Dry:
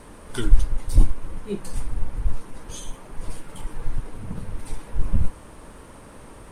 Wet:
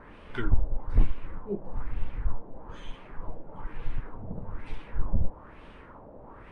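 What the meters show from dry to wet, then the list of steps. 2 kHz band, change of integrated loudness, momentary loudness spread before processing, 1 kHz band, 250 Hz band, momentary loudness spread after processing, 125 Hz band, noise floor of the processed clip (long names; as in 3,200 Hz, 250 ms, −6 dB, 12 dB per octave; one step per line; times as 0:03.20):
−1.5 dB, −6.0 dB, 21 LU, −2.0 dB, −5.0 dB, 18 LU, −5.5 dB, −49 dBFS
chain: wave folding −5 dBFS
auto-filter low-pass sine 1.1 Hz 640–3,000 Hz
level −5.5 dB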